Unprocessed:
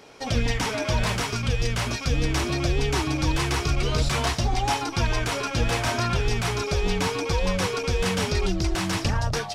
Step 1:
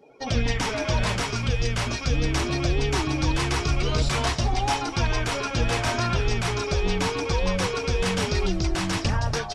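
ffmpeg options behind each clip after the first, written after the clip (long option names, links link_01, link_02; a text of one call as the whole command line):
ffmpeg -i in.wav -filter_complex "[0:a]afftdn=noise_reduction=21:noise_floor=-45,asplit=6[link_01][link_02][link_03][link_04][link_05][link_06];[link_02]adelay=164,afreqshift=-48,volume=-17dB[link_07];[link_03]adelay=328,afreqshift=-96,volume=-22.7dB[link_08];[link_04]adelay=492,afreqshift=-144,volume=-28.4dB[link_09];[link_05]adelay=656,afreqshift=-192,volume=-34dB[link_10];[link_06]adelay=820,afreqshift=-240,volume=-39.7dB[link_11];[link_01][link_07][link_08][link_09][link_10][link_11]amix=inputs=6:normalize=0" out.wav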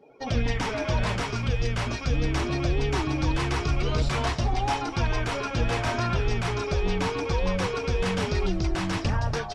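ffmpeg -i in.wav -af "highshelf=frequency=4300:gain=-9,acontrast=83,volume=-8dB" out.wav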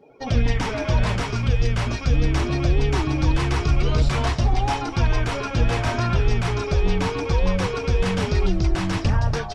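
ffmpeg -i in.wav -af "lowshelf=frequency=170:gain=5.5,volume=2dB" out.wav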